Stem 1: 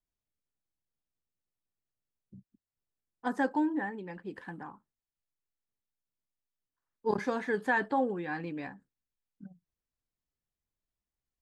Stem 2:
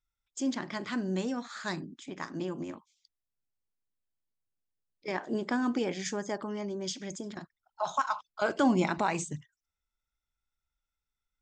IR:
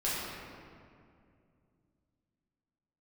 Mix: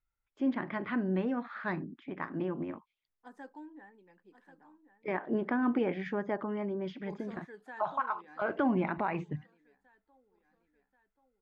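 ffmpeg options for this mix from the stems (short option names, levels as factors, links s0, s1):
-filter_complex "[0:a]highpass=210,volume=0.119,asplit=2[s0][s1];[s1]volume=0.224[s2];[1:a]lowpass=f=2400:w=0.5412,lowpass=f=2400:w=1.3066,volume=1.12[s3];[s2]aecho=0:1:1083|2166|3249|4332|5415|6498:1|0.44|0.194|0.0852|0.0375|0.0165[s4];[s0][s3][s4]amix=inputs=3:normalize=0,alimiter=limit=0.0944:level=0:latency=1:release=130"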